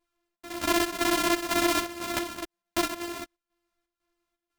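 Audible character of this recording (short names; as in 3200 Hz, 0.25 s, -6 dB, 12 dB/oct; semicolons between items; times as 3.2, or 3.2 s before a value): a buzz of ramps at a fixed pitch in blocks of 128 samples; chopped level 2 Hz, depth 65%, duty 70%; a shimmering, thickened sound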